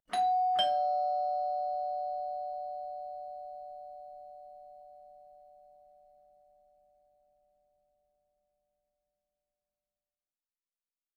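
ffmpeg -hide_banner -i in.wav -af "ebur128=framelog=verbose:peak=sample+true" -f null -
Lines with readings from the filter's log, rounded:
Integrated loudness:
  I:         -32.6 LUFS
  Threshold: -45.6 LUFS
Loudness range:
  LRA:        24.5 LU
  Threshold: -59.5 LUFS
  LRA low:   -56.5 LUFS
  LRA high:  -32.0 LUFS
Sample peak:
  Peak:      -17.5 dBFS
True peak:
  Peak:      -17.4 dBFS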